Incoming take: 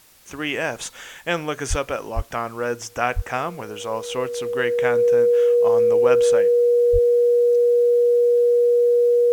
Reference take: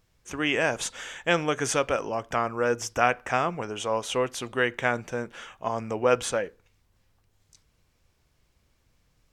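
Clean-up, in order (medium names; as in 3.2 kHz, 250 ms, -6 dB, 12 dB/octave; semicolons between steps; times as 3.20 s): band-stop 480 Hz, Q 30; de-plosive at 1.69/2.15/3.15/6.92 s; expander -31 dBFS, range -21 dB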